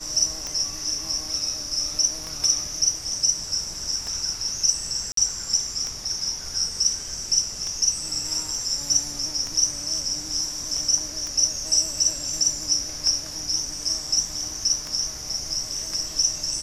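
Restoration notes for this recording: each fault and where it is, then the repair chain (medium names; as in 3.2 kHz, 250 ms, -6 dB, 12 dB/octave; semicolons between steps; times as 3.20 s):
tick 33 1/3 rpm -16 dBFS
5.12–5.17 s: dropout 53 ms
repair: de-click; interpolate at 5.12 s, 53 ms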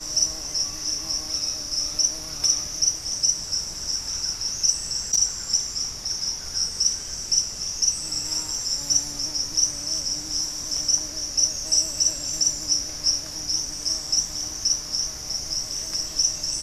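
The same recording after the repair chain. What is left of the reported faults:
nothing left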